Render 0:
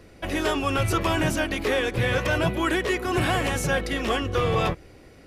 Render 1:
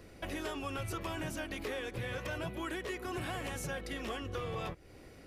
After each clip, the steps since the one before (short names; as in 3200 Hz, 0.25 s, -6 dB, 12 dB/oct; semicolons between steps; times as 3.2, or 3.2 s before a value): high shelf 11000 Hz +5.5 dB; compressor 3:1, threshold -35 dBFS, peak gain reduction 12 dB; gain -4.5 dB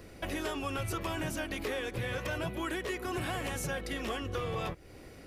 high shelf 12000 Hz +3.5 dB; gain +3.5 dB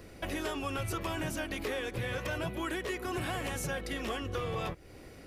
nothing audible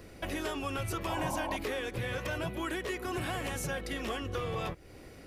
painted sound noise, 1.07–1.57, 510–1100 Hz -37 dBFS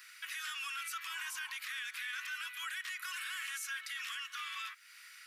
steep high-pass 1300 Hz 48 dB/oct; limiter -37 dBFS, peak gain reduction 9.5 dB; gain +5 dB